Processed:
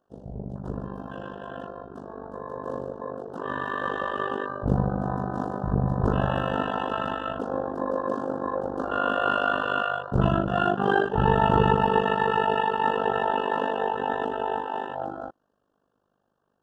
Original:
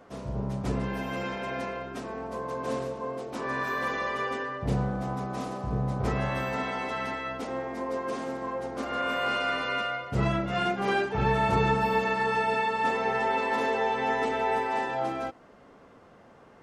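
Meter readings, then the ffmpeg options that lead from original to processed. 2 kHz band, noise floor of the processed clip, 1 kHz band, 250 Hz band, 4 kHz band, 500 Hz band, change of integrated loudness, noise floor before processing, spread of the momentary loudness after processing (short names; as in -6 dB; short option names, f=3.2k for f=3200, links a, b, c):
0.0 dB, -74 dBFS, +3.0 dB, +3.5 dB, 0.0 dB, +3.0 dB, +3.0 dB, -54 dBFS, 15 LU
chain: -af "afwtdn=0.0178,dynaudnorm=f=580:g=13:m=9dB,tremolo=f=50:d=0.919,asuperstop=centerf=2200:order=8:qfactor=2.3"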